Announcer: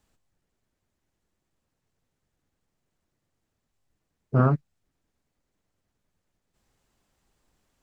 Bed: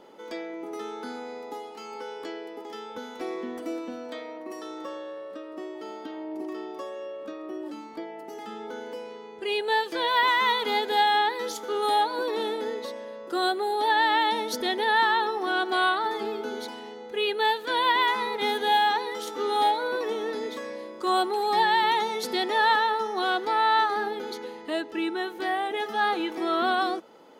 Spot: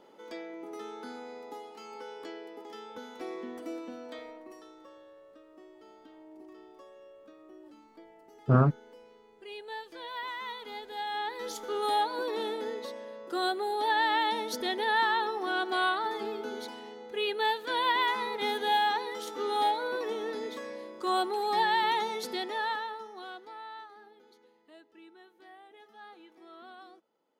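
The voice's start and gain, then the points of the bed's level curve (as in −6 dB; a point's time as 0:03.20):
4.15 s, −1.5 dB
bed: 0:04.24 −6 dB
0:04.79 −16 dB
0:10.94 −16 dB
0:11.55 −4.5 dB
0:22.13 −4.5 dB
0:23.94 −25.5 dB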